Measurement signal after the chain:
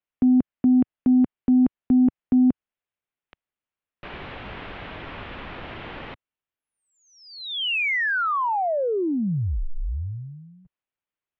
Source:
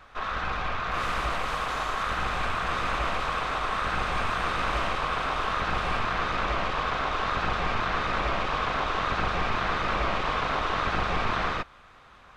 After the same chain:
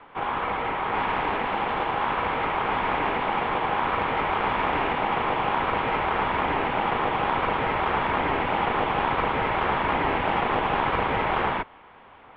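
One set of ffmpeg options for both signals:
-af "lowshelf=f=140:g=-6.5,highpass=f=190:t=q:w=0.5412,highpass=f=190:t=q:w=1.307,lowpass=f=3400:t=q:w=0.5176,lowpass=f=3400:t=q:w=0.7071,lowpass=f=3400:t=q:w=1.932,afreqshift=-280,aeval=exprs='0.178*(cos(1*acos(clip(val(0)/0.178,-1,1)))-cos(1*PI/2))+0.01*(cos(3*acos(clip(val(0)/0.178,-1,1)))-cos(3*PI/2))':c=same,volume=1.88"

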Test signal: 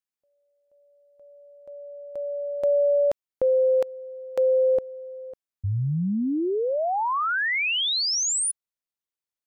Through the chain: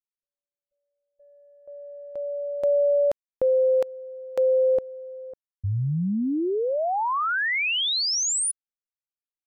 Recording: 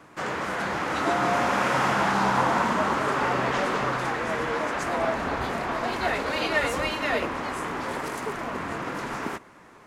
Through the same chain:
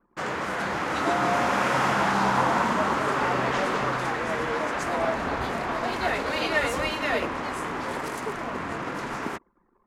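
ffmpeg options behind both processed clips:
-af "anlmdn=0.158"

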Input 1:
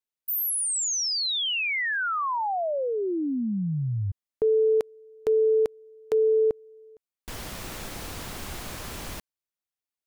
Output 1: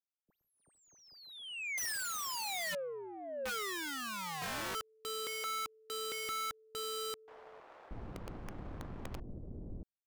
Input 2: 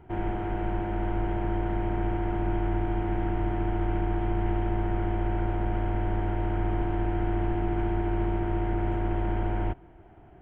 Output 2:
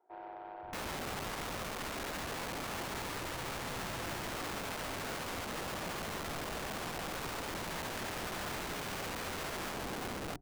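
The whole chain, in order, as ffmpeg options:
-filter_complex "[0:a]acrossover=split=540[s0][s1];[s0]adelay=630[s2];[s2][s1]amix=inputs=2:normalize=0,adynamicsmooth=sensitivity=1.5:basefreq=670,aeval=exprs='(mod(33.5*val(0)+1,2)-1)/33.5':c=same,volume=0.596"

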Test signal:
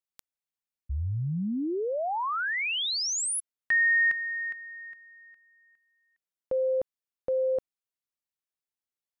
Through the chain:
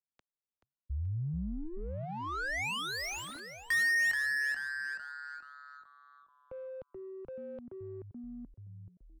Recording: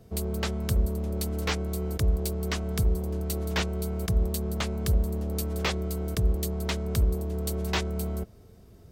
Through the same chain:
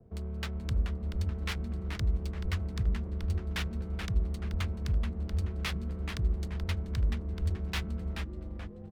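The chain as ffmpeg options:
-filter_complex "[0:a]asplit=7[s0][s1][s2][s3][s4][s5][s6];[s1]adelay=430,afreqshift=-140,volume=0.562[s7];[s2]adelay=860,afreqshift=-280,volume=0.263[s8];[s3]adelay=1290,afreqshift=-420,volume=0.124[s9];[s4]adelay=1720,afreqshift=-560,volume=0.0582[s10];[s5]adelay=2150,afreqshift=-700,volume=0.0275[s11];[s6]adelay=2580,afreqshift=-840,volume=0.0129[s12];[s0][s7][s8][s9][s10][s11][s12]amix=inputs=7:normalize=0,acrossover=split=180|1100|5100[s13][s14][s15][s16];[s14]acompressor=threshold=0.01:ratio=6:attack=0.12:release=189:detection=peak[s17];[s13][s17][s15][s16]amix=inputs=4:normalize=0,adynamicequalizer=threshold=0.00398:dfrequency=3600:dqfactor=1.7:tfrequency=3600:tqfactor=1.7:attack=5:release=100:ratio=0.375:range=2.5:mode=cutabove:tftype=bell,adynamicsmooth=sensitivity=6.5:basefreq=1000,volume=0.596"

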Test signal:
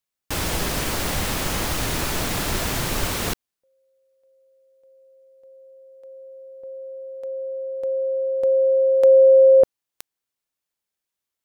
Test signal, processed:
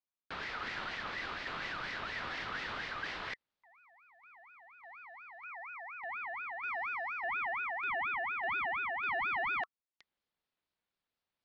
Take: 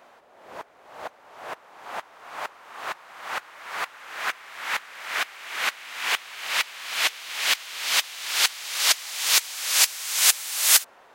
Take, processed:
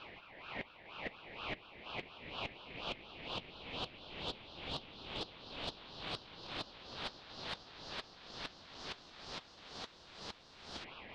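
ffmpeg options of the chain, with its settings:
-filter_complex "[0:a]asplit=2[s0][s1];[s1]acrusher=bits=3:mode=log:mix=0:aa=0.000001,volume=0.398[s2];[s0][s2]amix=inputs=2:normalize=0,equalizer=f=91:w=3.1:g=-9.5,areverse,acompressor=threshold=0.0316:ratio=6:attack=0.6:release=903:knee=6:detection=rms,areverse,lowpass=f=3000:w=0.5412,lowpass=f=3000:w=1.3066,asoftclip=type=tanh:threshold=0.0335,aeval=exprs='val(0)*sin(2*PI*1600*n/s+1600*0.25/4.2*sin(2*PI*4.2*n/s))':c=same,volume=1.19"

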